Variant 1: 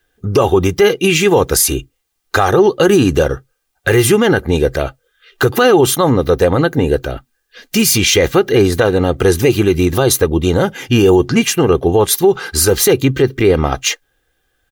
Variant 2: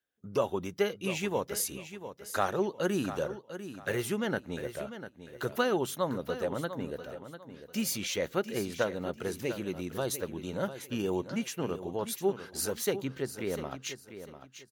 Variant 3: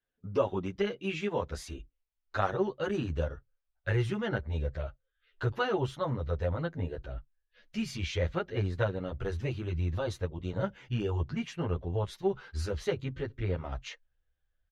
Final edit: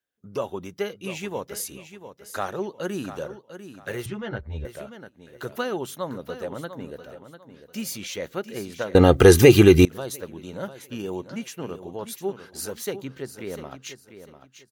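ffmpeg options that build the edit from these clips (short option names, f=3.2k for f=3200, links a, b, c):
-filter_complex "[1:a]asplit=3[a][b][c];[a]atrim=end=4.062[d];[2:a]atrim=start=4.058:end=4.652[e];[b]atrim=start=4.648:end=8.952[f];[0:a]atrim=start=8.948:end=9.852[g];[c]atrim=start=9.848[h];[d][e]acrossfade=d=0.004:c1=hsin:c2=hsin[i];[i][f]acrossfade=d=0.004:c1=hsin:c2=hsin[j];[j][g]acrossfade=d=0.004:c1=hsin:c2=hsin[k];[k][h]acrossfade=d=0.004:c1=hsin:c2=hsin"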